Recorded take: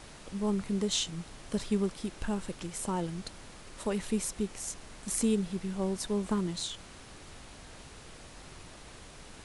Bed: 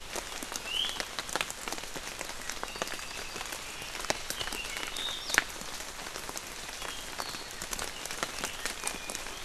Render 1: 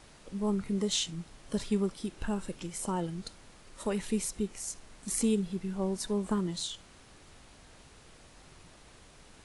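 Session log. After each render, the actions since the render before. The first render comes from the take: noise print and reduce 6 dB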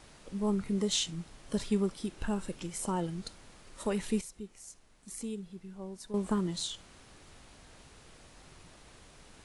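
4.21–6.14 s: gain -11 dB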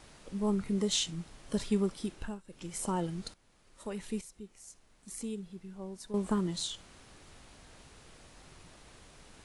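2.11–2.76 s: dip -22.5 dB, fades 0.32 s; 3.34–5.17 s: fade in, from -15.5 dB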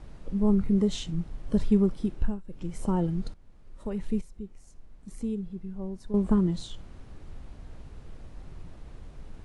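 tilt EQ -3.5 dB/octave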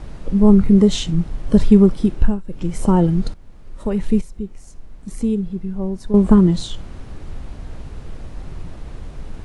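trim +12 dB; peak limiter -1 dBFS, peak gain reduction 1 dB

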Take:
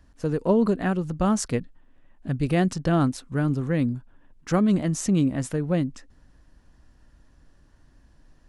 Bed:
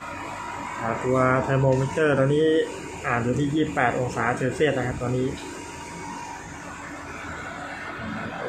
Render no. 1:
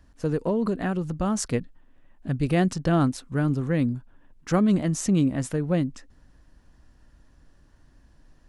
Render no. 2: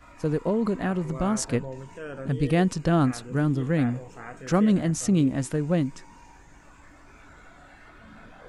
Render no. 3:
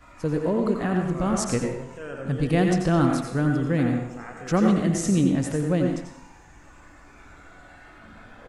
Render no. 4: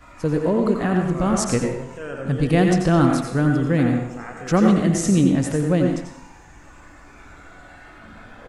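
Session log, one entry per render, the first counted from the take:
0.48–1.44 s: compression 3:1, threshold -21 dBFS
add bed -17 dB
delay 90 ms -10.5 dB; plate-style reverb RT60 0.66 s, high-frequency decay 0.75×, pre-delay 75 ms, DRR 3.5 dB
trim +4 dB

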